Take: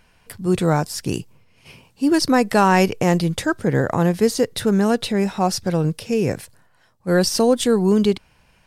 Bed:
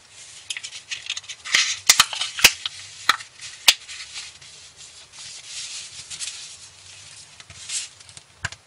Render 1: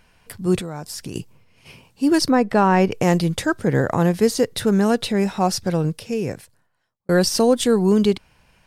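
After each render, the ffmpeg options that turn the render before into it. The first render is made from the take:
-filter_complex "[0:a]asettb=1/sr,asplit=3[s0][s1][s2];[s0]atrim=end=0.604[s3];[s1]atrim=start=0.6:end=1.16,asetpts=PTS-STARTPTS,afade=t=in:d=0.004:c=qsin,afade=t=out:st=0.556:d=0.004:c=qsin,acompressor=threshold=0.0398:ratio=5:attack=3.2:release=140:knee=1:detection=peak[s4];[s2]atrim=start=1.156[s5];[s3][s4]acrossfade=d=0.004:c1=hsin:c2=qsin[s6];[s6][s5]acrossfade=d=0.004:c1=qsin:c2=hsin,asettb=1/sr,asplit=3[s7][s8][s9];[s7]atrim=end=2.294[s10];[s8]atrim=start=2.29:end=2.91,asetpts=PTS-STARTPTS,afade=t=in:d=0.004:c=qsin,afade=t=out:st=0.616:d=0.004:c=qsin,lowpass=f=1500:p=1[s11];[s9]atrim=start=2.906[s12];[s10][s11]acrossfade=d=0.004:c1=hsin:c2=qsin[s13];[s13][s12]acrossfade=d=0.004:c1=qsin:c2=hsin,asplit=2[s14][s15];[s14]atrim=end=7.09,asetpts=PTS-STARTPTS,afade=t=out:st=5.63:d=1.46[s16];[s15]atrim=start=7.09,asetpts=PTS-STARTPTS,afade=t=in:d=0.004:c=hsin[s17];[s16][s17]concat=n=2:v=0:a=1"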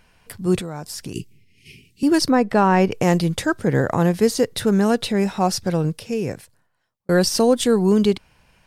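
-filter_complex "[0:a]asettb=1/sr,asplit=3[s0][s1][s2];[s0]atrim=end=1.134[s3];[s1]atrim=start=1.13:end=2.03,asetpts=PTS-STARTPTS,afade=t=in:d=0.004:c=qsin,afade=t=out:st=0.896:d=0.004:c=qsin,asuperstop=centerf=900:order=20:qfactor=0.62[s4];[s2]atrim=start=2.026[s5];[s3][s4]acrossfade=d=0.004:c1=hsin:c2=qsin[s6];[s6][s5]acrossfade=d=0.004:c1=qsin:c2=hsin"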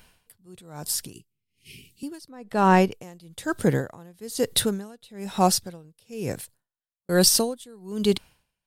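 -af "aexciter=amount=2.6:drive=1.2:freq=3100,aeval=exprs='val(0)*pow(10,-30*(0.5-0.5*cos(2*PI*1.1*n/s))/20)':c=same"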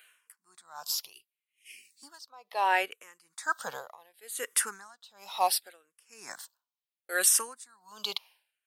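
-filter_complex "[0:a]highpass=f=1100:t=q:w=1.6,asplit=2[s0][s1];[s1]afreqshift=-0.7[s2];[s0][s2]amix=inputs=2:normalize=1"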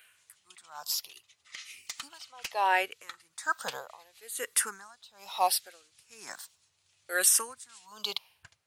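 -filter_complex "[1:a]volume=0.0473[s0];[0:a][s0]amix=inputs=2:normalize=0"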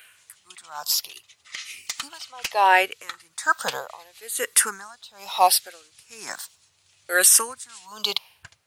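-af "volume=2.82,alimiter=limit=0.708:level=0:latency=1"

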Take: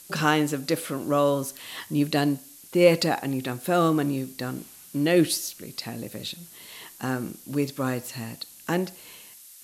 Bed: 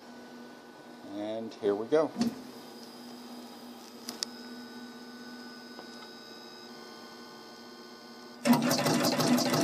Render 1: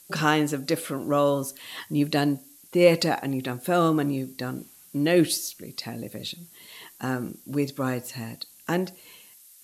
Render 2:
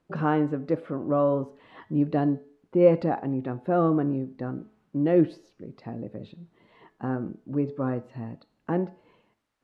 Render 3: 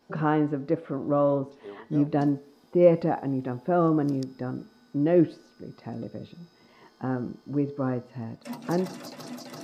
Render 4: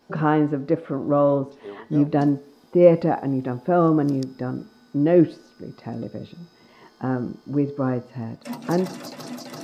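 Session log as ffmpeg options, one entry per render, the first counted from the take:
-af "afftdn=nr=6:nf=-48"
-af "lowpass=1000,bandreject=f=215:t=h:w=4,bandreject=f=430:t=h:w=4,bandreject=f=645:t=h:w=4,bandreject=f=860:t=h:w=4,bandreject=f=1075:t=h:w=4,bandreject=f=1290:t=h:w=4,bandreject=f=1505:t=h:w=4,bandreject=f=1720:t=h:w=4,bandreject=f=1935:t=h:w=4,bandreject=f=2150:t=h:w=4,bandreject=f=2365:t=h:w=4,bandreject=f=2580:t=h:w=4,bandreject=f=2795:t=h:w=4,bandreject=f=3010:t=h:w=4,bandreject=f=3225:t=h:w=4,bandreject=f=3440:t=h:w=4,bandreject=f=3655:t=h:w=4,bandreject=f=3870:t=h:w=4,bandreject=f=4085:t=h:w=4,bandreject=f=4300:t=h:w=4,bandreject=f=4515:t=h:w=4,bandreject=f=4730:t=h:w=4,bandreject=f=4945:t=h:w=4,bandreject=f=5160:t=h:w=4,bandreject=f=5375:t=h:w=4,bandreject=f=5590:t=h:w=4,bandreject=f=5805:t=h:w=4,bandreject=f=6020:t=h:w=4,bandreject=f=6235:t=h:w=4,bandreject=f=6450:t=h:w=4,bandreject=f=6665:t=h:w=4,bandreject=f=6880:t=h:w=4,bandreject=f=7095:t=h:w=4,bandreject=f=7310:t=h:w=4"
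-filter_complex "[1:a]volume=0.2[s0];[0:a][s0]amix=inputs=2:normalize=0"
-af "volume=1.68"

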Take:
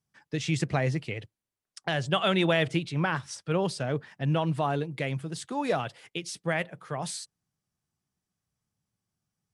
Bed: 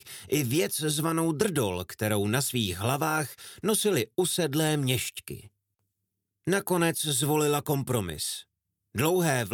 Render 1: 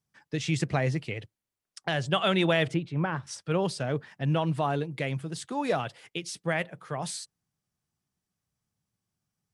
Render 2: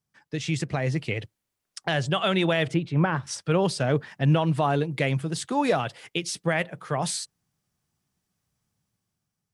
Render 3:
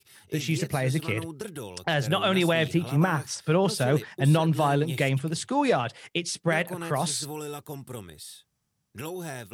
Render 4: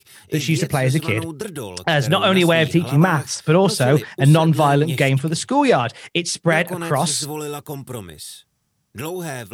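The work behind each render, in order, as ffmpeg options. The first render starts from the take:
-filter_complex "[0:a]asettb=1/sr,asplit=3[s0][s1][s2];[s0]atrim=end=2.744[s3];[s1]atrim=start=2.74:end=3.27,asetpts=PTS-STARTPTS,afade=t=in:d=0.004:c=qsin,afade=t=out:st=0.526:d=0.004:c=qsin,lowpass=f=1100:p=1[s4];[s2]atrim=start=3.266[s5];[s3][s4]acrossfade=d=0.004:c1=hsin:c2=qsin[s6];[s6][s5]acrossfade=d=0.004:c1=qsin:c2=hsin"
-af "alimiter=limit=0.126:level=0:latency=1:release=344,dynaudnorm=f=230:g=7:m=2.11"
-filter_complex "[1:a]volume=0.282[s0];[0:a][s0]amix=inputs=2:normalize=0"
-af "volume=2.51"

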